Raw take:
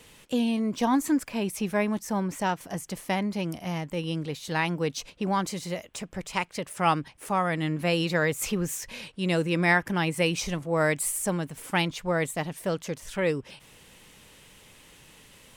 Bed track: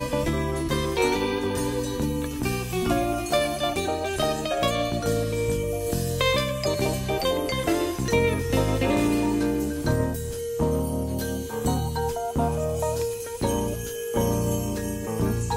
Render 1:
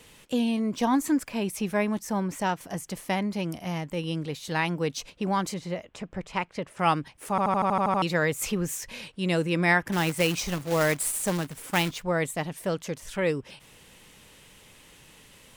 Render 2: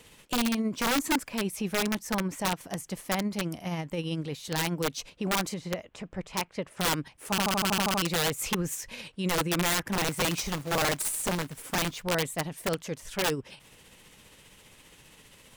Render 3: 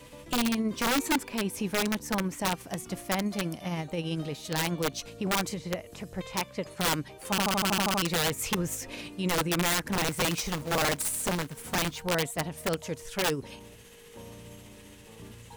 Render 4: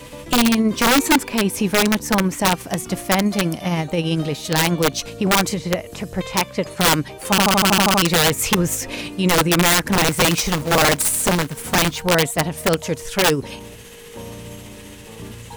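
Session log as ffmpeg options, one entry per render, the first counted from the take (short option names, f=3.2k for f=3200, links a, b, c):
-filter_complex "[0:a]asettb=1/sr,asplit=3[a][b][c];[a]atrim=end=5.544[d];[b]atrim=start=5.54:end=6.79,asetpts=PTS-STARTPTS,afade=t=in:d=0.004:c=qsin,afade=t=out:st=1.246:d=0.004:c=qsin,aemphasis=mode=reproduction:type=75fm[e];[c]atrim=start=6.786[f];[d][e]acrossfade=d=0.004:c1=hsin:c2=qsin[g];[g][f]acrossfade=d=0.004:c1=qsin:c2=hsin,asettb=1/sr,asplit=3[h][i][j];[h]atrim=end=9.924[k];[i]atrim=start=9.92:end=12.03,asetpts=PTS-STARTPTS,afade=t=in:d=0.004:c=qsin,afade=t=out:st=2.106:d=0.004:c=qsin,acrusher=bits=2:mode=log:mix=0:aa=0.000001[l];[j]atrim=start=12.026[m];[k][l]acrossfade=d=0.004:c1=hsin:c2=qsin[n];[n][m]acrossfade=d=0.004:c1=qsin:c2=hsin,asplit=10[o][p][q][r][s][t][u][v][w][x];[o]atrim=end=7.382[y];[p]atrim=start=7.298:end=7.382[z];[q]atrim=start=7.298:end=7.382[aa];[r]atrim=start=7.298:end=7.382[ab];[s]atrim=start=7.298:end=7.382[ac];[t]atrim=start=7.298:end=7.382[ad];[u]atrim=start=7.298:end=7.382[ae];[v]atrim=start=7.298:end=7.382[af];[w]atrim=start=7.298:end=7.382[ag];[x]atrim=start=8.018[ah];[y][z]acrossfade=d=0.004:c1=hsin:c2=hsin[ai];[ai][aa]acrossfade=d=0.004:c1=hsin:c2=hsin[aj];[aj][ab]acrossfade=d=0.004:c1=hsin:c2=hsin[ak];[ak][ac]acrossfade=d=0.004:c1=hsin:c2=hsin[al];[al][ad]acrossfade=d=0.004:c1=hsin:c2=hsin[am];[am][ae]acrossfade=d=0.004:c1=hsin:c2=hsin[an];[an][af]acrossfade=d=0.004:c1=hsin:c2=hsin[ao];[ao][ag]acrossfade=d=0.004:c1=hsin:c2=hsin[ap];[ap][ah]acrossfade=d=0.004:c1=hsin:c2=hsin"
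-af "tremolo=f=15:d=0.35,aeval=exprs='(mod(10*val(0)+1,2)-1)/10':c=same"
-filter_complex "[1:a]volume=-23dB[a];[0:a][a]amix=inputs=2:normalize=0"
-af "volume=11.5dB"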